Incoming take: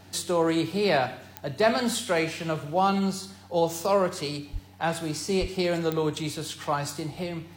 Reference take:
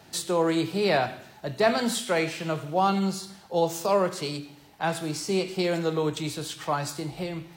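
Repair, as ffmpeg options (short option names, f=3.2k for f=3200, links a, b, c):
-filter_complex "[0:a]adeclick=t=4,bandreject=f=94.5:t=h:w=4,bandreject=f=189:t=h:w=4,bandreject=f=283.5:t=h:w=4,asplit=3[a][b][c];[a]afade=t=out:st=4.52:d=0.02[d];[b]highpass=f=140:w=0.5412,highpass=f=140:w=1.3066,afade=t=in:st=4.52:d=0.02,afade=t=out:st=4.64:d=0.02[e];[c]afade=t=in:st=4.64:d=0.02[f];[d][e][f]amix=inputs=3:normalize=0,asplit=3[g][h][i];[g]afade=t=out:st=5.4:d=0.02[j];[h]highpass=f=140:w=0.5412,highpass=f=140:w=1.3066,afade=t=in:st=5.4:d=0.02,afade=t=out:st=5.52:d=0.02[k];[i]afade=t=in:st=5.52:d=0.02[l];[j][k][l]amix=inputs=3:normalize=0"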